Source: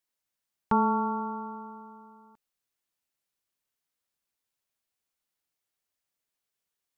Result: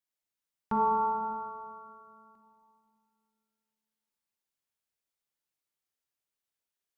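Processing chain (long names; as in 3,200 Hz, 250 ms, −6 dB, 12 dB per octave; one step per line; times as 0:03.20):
dense smooth reverb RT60 2.4 s, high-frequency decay 0.9×, DRR 0 dB
level −7.5 dB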